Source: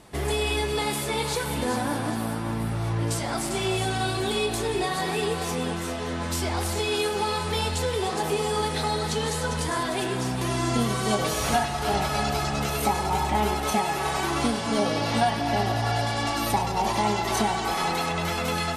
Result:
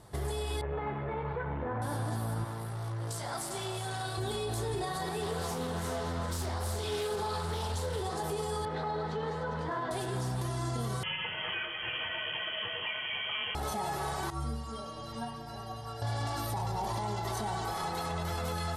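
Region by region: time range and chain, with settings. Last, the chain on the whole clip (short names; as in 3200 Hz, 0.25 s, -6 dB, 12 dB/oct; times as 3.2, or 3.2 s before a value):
0.61–1.82 steep low-pass 2400 Hz + core saturation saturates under 450 Hz
2.44–4.18 HPF 72 Hz + low shelf 360 Hz -10 dB + core saturation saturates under 1000 Hz
5.22–8.01 doubler 43 ms -4 dB + Doppler distortion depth 0.27 ms
8.65–9.91 self-modulated delay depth 0.061 ms + BPF 160–2300 Hz
11.03–13.55 inverted band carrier 3200 Hz + HPF 200 Hz 6 dB/oct
14.3–16.02 bell 64 Hz +7.5 dB 0.43 oct + metallic resonator 68 Hz, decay 0.63 s, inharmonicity 0.03
whole clip: fifteen-band EQ 100 Hz +10 dB, 250 Hz -7 dB, 2500 Hz -10 dB, 6300 Hz -3 dB; limiter -22.5 dBFS; gain -3.5 dB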